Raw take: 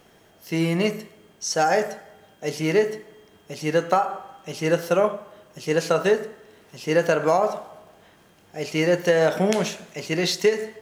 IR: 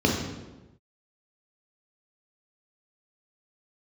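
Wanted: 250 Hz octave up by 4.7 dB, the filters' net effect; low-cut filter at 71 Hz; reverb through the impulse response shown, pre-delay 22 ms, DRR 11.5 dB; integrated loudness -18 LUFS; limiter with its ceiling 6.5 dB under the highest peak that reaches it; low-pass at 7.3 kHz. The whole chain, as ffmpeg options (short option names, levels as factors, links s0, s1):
-filter_complex "[0:a]highpass=71,lowpass=7300,equalizer=f=250:t=o:g=7.5,alimiter=limit=0.299:level=0:latency=1,asplit=2[s0][s1];[1:a]atrim=start_sample=2205,adelay=22[s2];[s1][s2]afir=irnorm=-1:irlink=0,volume=0.0447[s3];[s0][s3]amix=inputs=2:normalize=0,volume=1.58"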